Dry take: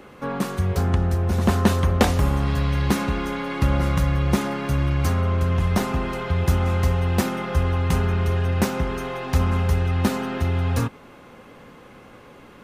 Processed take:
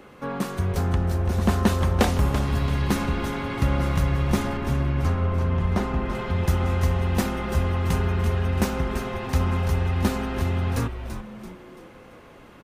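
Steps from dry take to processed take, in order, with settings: 4.57–6.15 s: low-pass 2.4 kHz 6 dB/octave; frequency-shifting echo 336 ms, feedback 42%, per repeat -150 Hz, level -9 dB; trim -2.5 dB

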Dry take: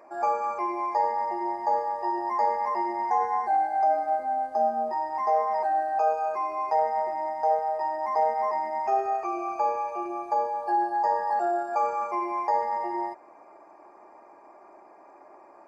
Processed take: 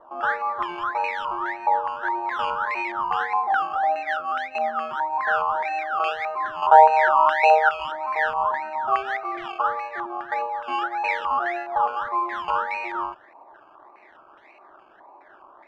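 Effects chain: 6.62–7.69 s: high-order bell 620 Hz +10 dB; decimation with a swept rate 18×, swing 60% 1.7 Hz; step-sequenced low-pass 4.8 Hz 990–2300 Hz; trim -3.5 dB

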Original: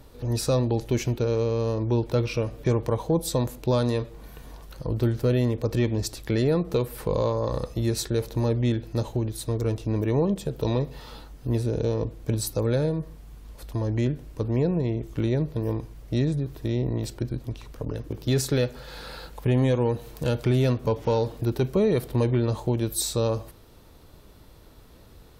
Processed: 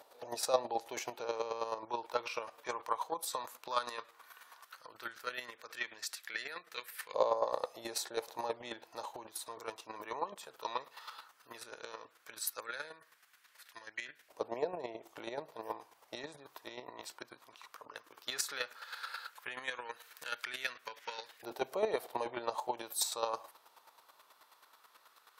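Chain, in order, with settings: LFO high-pass saw up 0.14 Hz 700–1800 Hz; square tremolo 9.3 Hz, depth 60%, duty 20%; trim -1.5 dB

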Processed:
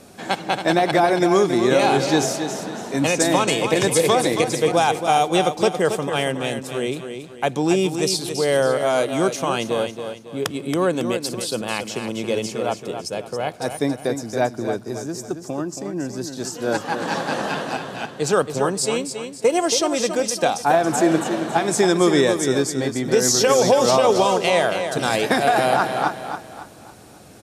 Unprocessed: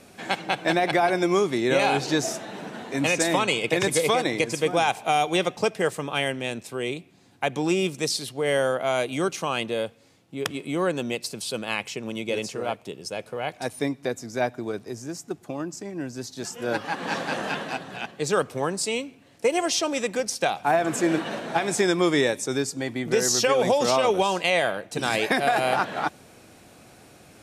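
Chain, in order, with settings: peaking EQ 2.3 kHz -6 dB 1 oct; feedback delay 276 ms, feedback 38%, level -8 dB; trim +5 dB

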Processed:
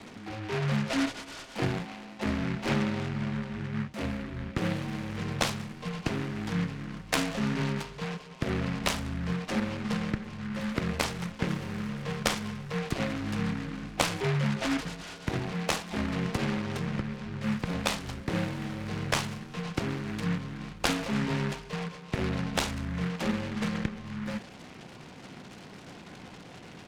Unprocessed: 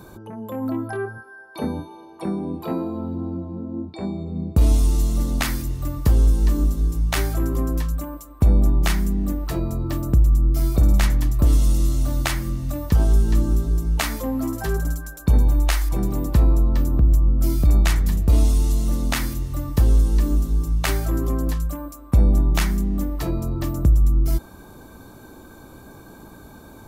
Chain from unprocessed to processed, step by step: mistuned SSB -120 Hz 260–2500 Hz; speakerphone echo 190 ms, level -23 dB; delay time shaken by noise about 1.5 kHz, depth 0.18 ms

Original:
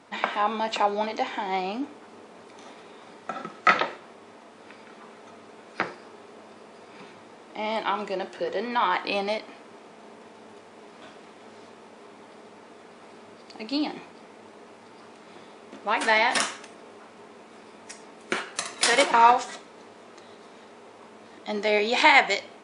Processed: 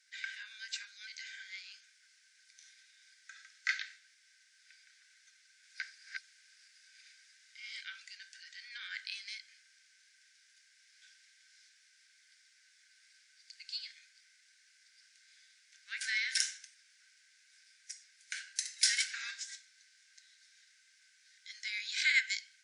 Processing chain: 5.28–7.81 s: chunks repeated in reverse 351 ms, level -1.5 dB; rippled Chebyshev high-pass 1.5 kHz, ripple 9 dB; peaking EQ 2.2 kHz -8.5 dB 0.84 oct

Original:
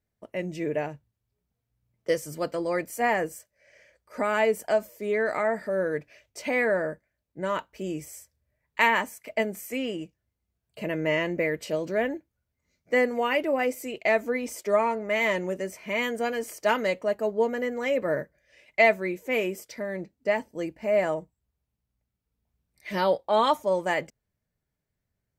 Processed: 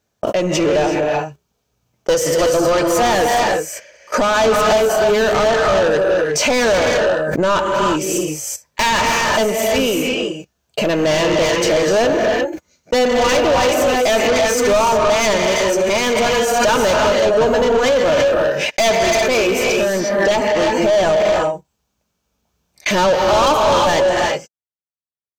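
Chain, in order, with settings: gated-style reverb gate 390 ms rising, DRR 2 dB; overdrive pedal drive 28 dB, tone 5 kHz, clips at -7 dBFS; bass shelf 170 Hz +6.5 dB; gate -28 dBFS, range -43 dB; graphic EQ with 31 bands 2 kHz -11 dB, 6.3 kHz +7 dB, 10 kHz -5 dB; swell ahead of each attack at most 29 dB/s

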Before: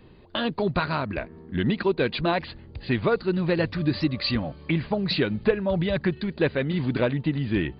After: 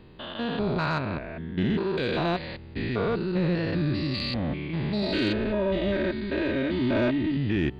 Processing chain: spectrogram pixelated in time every 200 ms; 5.02–7.37 s: comb 3.2 ms, depth 93%; saturation -17.5 dBFS, distortion -24 dB; trim +2.5 dB

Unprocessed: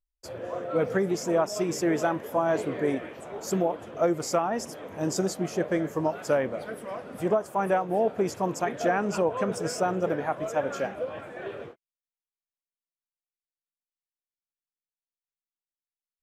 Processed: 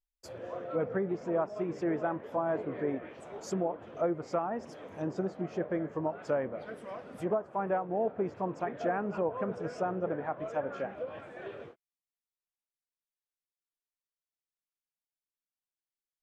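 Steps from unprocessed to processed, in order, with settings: low-pass that closes with the level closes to 1.7 kHz, closed at -24.5 dBFS; trim -6 dB

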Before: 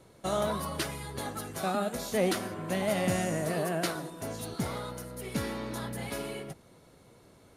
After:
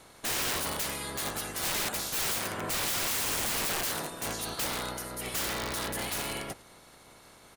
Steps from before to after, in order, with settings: spectral peaks clipped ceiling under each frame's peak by 16 dB; frequency-shifting echo 107 ms, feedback 32%, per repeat -34 Hz, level -22.5 dB; integer overflow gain 28.5 dB; trim +3 dB

